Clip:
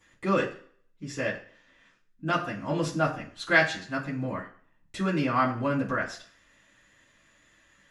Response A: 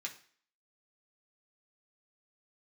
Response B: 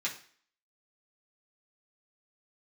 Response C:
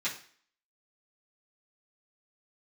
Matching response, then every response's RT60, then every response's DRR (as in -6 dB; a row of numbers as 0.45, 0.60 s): C; 0.50, 0.50, 0.50 s; -1.0, -6.0, -11.0 dB